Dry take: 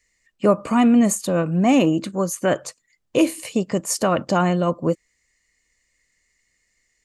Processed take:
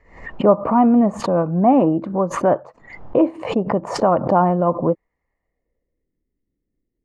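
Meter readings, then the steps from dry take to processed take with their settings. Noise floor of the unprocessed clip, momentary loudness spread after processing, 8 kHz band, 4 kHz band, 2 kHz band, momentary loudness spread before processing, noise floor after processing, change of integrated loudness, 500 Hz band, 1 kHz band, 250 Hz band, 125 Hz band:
-70 dBFS, 8 LU, -14.0 dB, -6.5 dB, -4.5 dB, 9 LU, -78 dBFS, +2.0 dB, +4.0 dB, +6.0 dB, +1.0 dB, +1.0 dB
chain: low-pass sweep 890 Hz -> 310 Hz, 5.3–6.2; backwards sustainer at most 100 dB/s

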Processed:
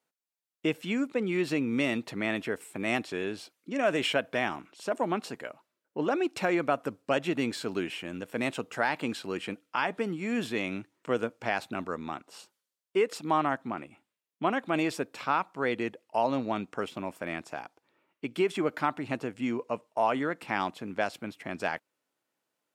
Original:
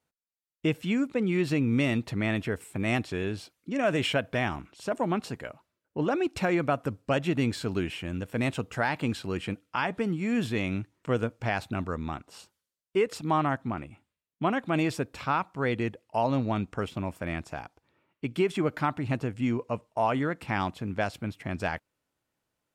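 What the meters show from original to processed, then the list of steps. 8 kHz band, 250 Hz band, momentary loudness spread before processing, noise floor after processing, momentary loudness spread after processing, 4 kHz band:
0.0 dB, -3.0 dB, 8 LU, under -85 dBFS, 10 LU, 0.0 dB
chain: HPF 250 Hz 12 dB/oct

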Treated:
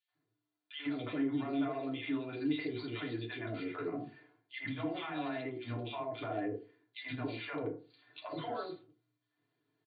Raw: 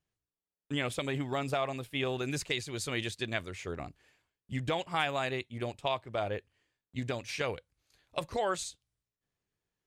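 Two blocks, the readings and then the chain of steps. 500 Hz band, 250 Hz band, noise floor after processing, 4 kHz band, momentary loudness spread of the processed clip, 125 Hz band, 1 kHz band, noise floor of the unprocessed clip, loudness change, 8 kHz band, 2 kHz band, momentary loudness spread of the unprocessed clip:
-5.5 dB, +3.0 dB, under -85 dBFS, -8.5 dB, 12 LU, -6.0 dB, -6.5 dB, under -85 dBFS, -4.0 dB, under -35 dB, -6.5 dB, 9 LU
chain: dynamic EQ 250 Hz, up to +5 dB, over -46 dBFS, Q 0.78; comb 2.9 ms, depth 55%; three bands offset in time highs, mids, lows 80/150 ms, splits 670/2300 Hz; compressor 5:1, threshold -42 dBFS, peak gain reduction 15.5 dB; limiter -38 dBFS, peak gain reduction 11 dB; air absorption 63 m; FDN reverb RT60 0.37 s, low-frequency decay 1×, high-frequency decay 0.5×, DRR -1.5 dB; FFT band-pass 100–4700 Hz; gain +4 dB

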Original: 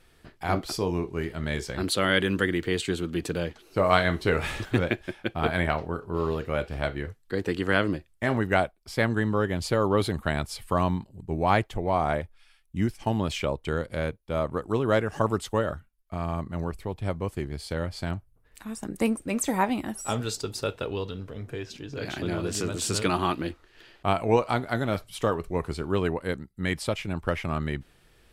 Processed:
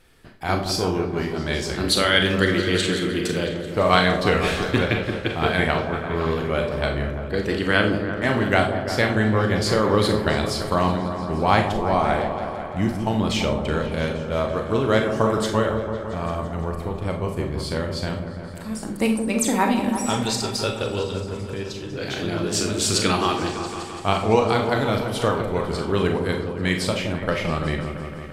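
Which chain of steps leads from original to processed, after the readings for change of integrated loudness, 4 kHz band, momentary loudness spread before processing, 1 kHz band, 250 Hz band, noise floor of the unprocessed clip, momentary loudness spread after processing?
+5.5 dB, +9.0 dB, 10 LU, +5.5 dB, +5.5 dB, -61 dBFS, 9 LU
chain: repeats that get brighter 0.169 s, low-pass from 750 Hz, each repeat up 1 oct, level -6 dB; dynamic EQ 4500 Hz, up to +6 dB, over -45 dBFS, Q 0.84; Schroeder reverb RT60 0.34 s, combs from 29 ms, DRR 4.5 dB; gain +2.5 dB

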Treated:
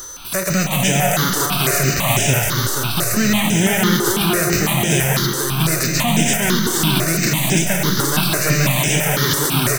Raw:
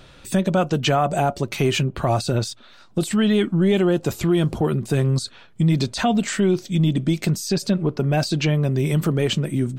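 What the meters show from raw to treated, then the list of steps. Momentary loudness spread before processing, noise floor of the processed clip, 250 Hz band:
4 LU, -22 dBFS, +1.0 dB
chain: spectral whitening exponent 0.3; in parallel at +1 dB: negative-ratio compressor -26 dBFS, ratio -1; on the sum: digital reverb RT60 1 s, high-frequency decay 0.75×, pre-delay 95 ms, DRR 5 dB; whine 6100 Hz -30 dBFS; on a send: feedback echo 0.479 s, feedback 51%, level -3.5 dB; on the sum: step phaser 6 Hz 670–4300 Hz

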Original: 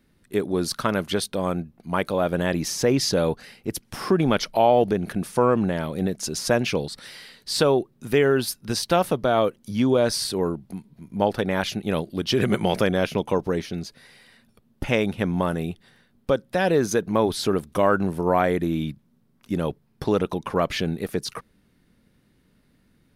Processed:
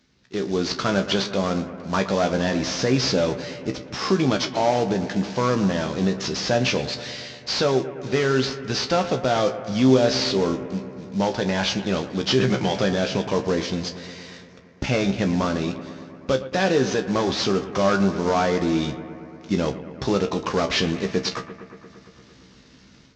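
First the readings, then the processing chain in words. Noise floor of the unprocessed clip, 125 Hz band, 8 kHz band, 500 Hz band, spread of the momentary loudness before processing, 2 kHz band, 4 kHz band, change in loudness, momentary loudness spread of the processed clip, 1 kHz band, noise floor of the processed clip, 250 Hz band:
-63 dBFS, +1.5 dB, -0.5 dB, 0.0 dB, 12 LU, +2.0 dB, +4.0 dB, +0.5 dB, 10 LU, 0.0 dB, -50 dBFS, +2.0 dB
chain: CVSD 32 kbps; HPF 46 Hz; high shelf 4200 Hz +11 dB; in parallel at +2.5 dB: limiter -16.5 dBFS, peak gain reduction 9 dB; on the sum: AGC; resonator 65 Hz, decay 0.17 s, harmonics all, mix 90%; on a send: analogue delay 0.115 s, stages 2048, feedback 76%, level -14 dB; on the sum: gain -3.5 dB

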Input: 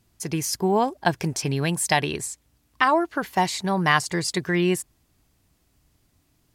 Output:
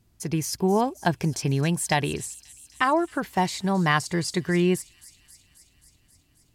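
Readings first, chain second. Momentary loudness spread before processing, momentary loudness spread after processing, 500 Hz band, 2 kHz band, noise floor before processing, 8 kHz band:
9 LU, 7 LU, -1.0 dB, -3.5 dB, -67 dBFS, -3.0 dB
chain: low shelf 330 Hz +6.5 dB; thin delay 0.267 s, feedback 71%, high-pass 5400 Hz, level -13 dB; gain -3.5 dB

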